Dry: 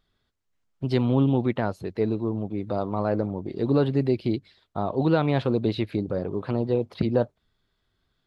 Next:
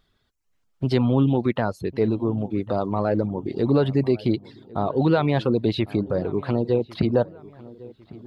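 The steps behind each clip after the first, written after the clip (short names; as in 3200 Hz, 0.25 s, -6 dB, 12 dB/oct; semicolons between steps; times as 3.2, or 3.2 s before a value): reverb removal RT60 0.54 s; in parallel at -0.5 dB: limiter -20.5 dBFS, peak gain reduction 10.5 dB; on the sum: darkening echo 1.102 s, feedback 44%, low-pass 2200 Hz, level -20 dB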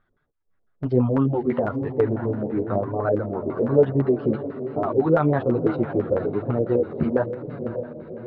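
diffused feedback echo 0.572 s, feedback 51%, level -9.5 dB; LFO low-pass square 6 Hz 540–1500 Hz; chorus voices 2, 1 Hz, delay 10 ms, depth 3.3 ms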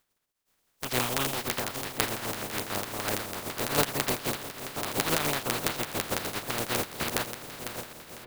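spectral contrast lowered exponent 0.19; gain -8.5 dB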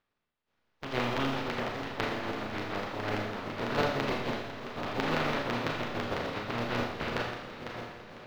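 air absorption 260 m; Schroeder reverb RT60 0.8 s, combs from 26 ms, DRR 0 dB; gain -2 dB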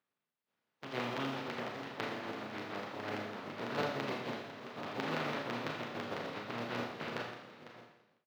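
ending faded out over 1.16 s; HPF 120 Hz 24 dB/oct; gain -6.5 dB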